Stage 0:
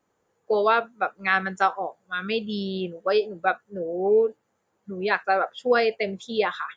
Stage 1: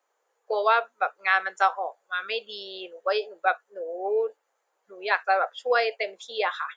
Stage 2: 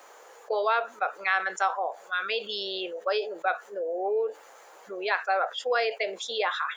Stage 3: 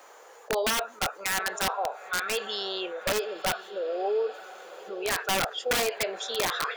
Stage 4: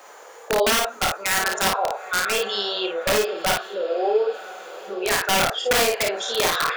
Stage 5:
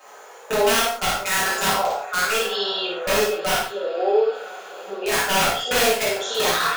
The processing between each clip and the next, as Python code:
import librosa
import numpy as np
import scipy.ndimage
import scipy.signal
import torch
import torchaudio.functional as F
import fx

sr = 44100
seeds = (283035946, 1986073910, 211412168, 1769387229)

y1 = scipy.signal.sosfilt(scipy.signal.butter(4, 500.0, 'highpass', fs=sr, output='sos'), x)
y2 = fx.env_flatten(y1, sr, amount_pct=50)
y2 = y2 * librosa.db_to_amplitude(-5.0)
y3 = fx.echo_diffused(y2, sr, ms=952, feedback_pct=50, wet_db=-15.5)
y3 = (np.mod(10.0 ** (19.5 / 20.0) * y3 + 1.0, 2.0) - 1.0) / 10.0 ** (19.5 / 20.0)
y4 = fx.room_early_taps(y3, sr, ms=(30, 54), db=(-7.5, -3.5))
y4 = y4 * librosa.db_to_amplitude(5.0)
y5 = fx.rev_gated(y4, sr, seeds[0], gate_ms=170, shape='falling', drr_db=-7.5)
y5 = y5 * librosa.db_to_amplitude(-7.0)